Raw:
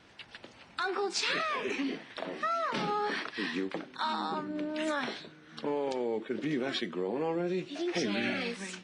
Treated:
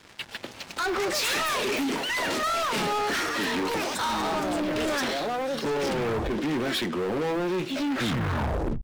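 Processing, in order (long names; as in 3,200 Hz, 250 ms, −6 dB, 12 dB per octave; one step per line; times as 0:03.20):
turntable brake at the end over 1.17 s
delay with pitch and tempo change per echo 475 ms, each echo +7 semitones, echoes 3, each echo −6 dB
leveller curve on the samples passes 5
level −5.5 dB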